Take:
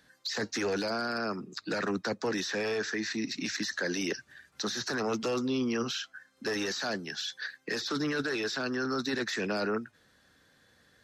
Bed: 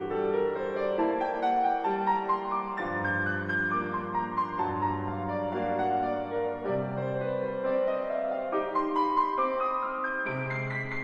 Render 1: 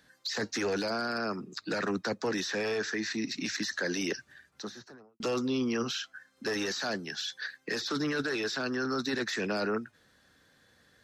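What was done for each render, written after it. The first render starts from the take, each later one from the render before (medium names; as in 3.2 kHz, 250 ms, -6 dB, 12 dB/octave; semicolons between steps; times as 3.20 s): 4.17–5.20 s: studio fade out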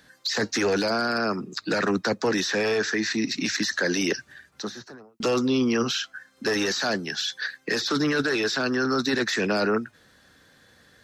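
trim +7.5 dB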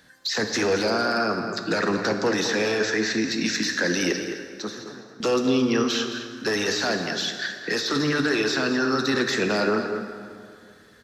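echo from a far wall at 37 m, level -9 dB; plate-style reverb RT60 2.2 s, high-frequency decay 0.7×, DRR 6 dB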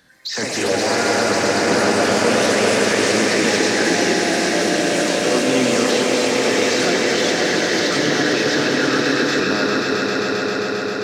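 echo with a slow build-up 133 ms, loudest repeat 5, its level -6 dB; ever faster or slower copies 114 ms, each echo +3 st, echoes 3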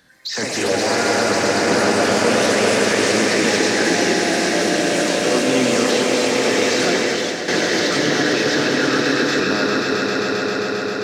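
6.96–7.48 s: fade out linear, to -9 dB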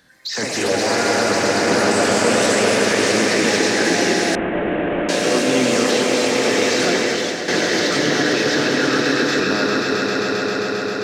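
1.91–2.63 s: peaking EQ 7.9 kHz +8 dB 0.21 oct; 4.35–5.09 s: CVSD coder 16 kbps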